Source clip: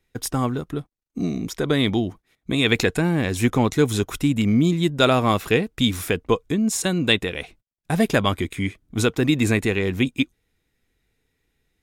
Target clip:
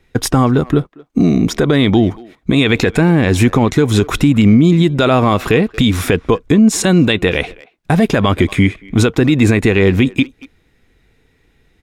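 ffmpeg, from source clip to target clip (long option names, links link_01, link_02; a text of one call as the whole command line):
ffmpeg -i in.wav -filter_complex "[0:a]lowpass=frequency=3000:poles=1,acompressor=threshold=-25dB:ratio=2,asplit=2[link_01][link_02];[link_02]adelay=230,highpass=300,lowpass=3400,asoftclip=type=hard:threshold=-21.5dB,volume=-22dB[link_03];[link_01][link_03]amix=inputs=2:normalize=0,alimiter=level_in=17.5dB:limit=-1dB:release=50:level=0:latency=1,volume=-1dB" out.wav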